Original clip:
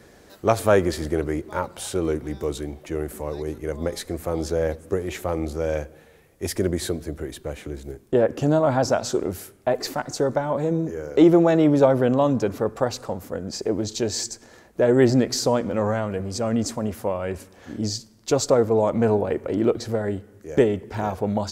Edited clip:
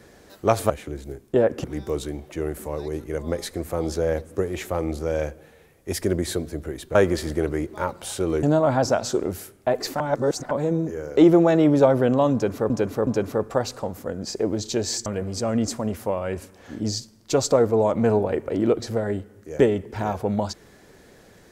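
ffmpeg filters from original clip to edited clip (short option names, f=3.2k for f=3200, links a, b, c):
-filter_complex "[0:a]asplit=10[a][b][c][d][e][f][g][h][i][j];[a]atrim=end=0.702[k];[b]atrim=start=7.488:end=8.432[l];[c]atrim=start=2.178:end=7.492[m];[d]atrim=start=0.698:end=2.182[n];[e]atrim=start=8.428:end=10.002[o];[f]atrim=start=9.998:end=10.512,asetpts=PTS-STARTPTS,areverse[p];[g]atrim=start=10.508:end=12.702[q];[h]atrim=start=12.328:end=12.702[r];[i]atrim=start=12.328:end=14.322[s];[j]atrim=start=16.038[t];[k][l]acrossfade=d=0.004:c1=hsin:c2=hsin[u];[u][m]acrossfade=d=0.004:c1=hsin:c2=hsin[v];[v][n]acrossfade=d=0.004:c1=hsin:c2=hsin[w];[w][o]acrossfade=d=0.004:c1=hsin:c2=hsin[x];[x][p]acrossfade=d=0.004:c1=hsin:c2=hsin[y];[y][q]acrossfade=d=0.004:c1=hsin:c2=hsin[z];[z][r]acrossfade=d=0.004:c1=hsin:c2=hsin[aa];[aa][s]acrossfade=d=0.004:c1=hsin:c2=hsin[ab];[ab][t]acrossfade=d=0.004:c1=hsin:c2=hsin"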